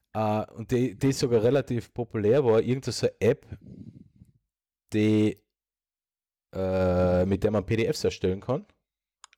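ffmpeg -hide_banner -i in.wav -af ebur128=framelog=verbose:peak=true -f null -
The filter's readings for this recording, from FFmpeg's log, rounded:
Integrated loudness:
  I:         -26.0 LUFS
  Threshold: -36.8 LUFS
Loudness range:
  LRA:         5.3 LU
  Threshold: -47.6 LUFS
  LRA low:   -30.8 LUFS
  LRA high:  -25.6 LUFS
True peak:
  Peak:      -12.6 dBFS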